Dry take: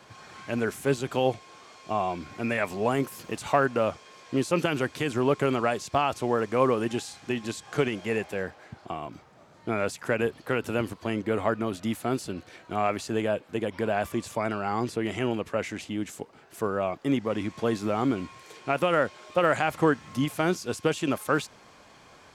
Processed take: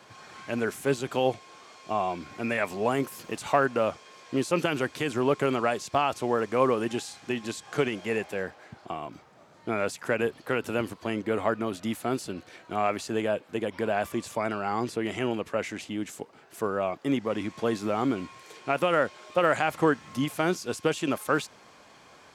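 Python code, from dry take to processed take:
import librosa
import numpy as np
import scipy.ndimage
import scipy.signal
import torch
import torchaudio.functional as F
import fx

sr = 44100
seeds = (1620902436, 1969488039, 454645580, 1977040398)

y = fx.low_shelf(x, sr, hz=100.0, db=-9.0)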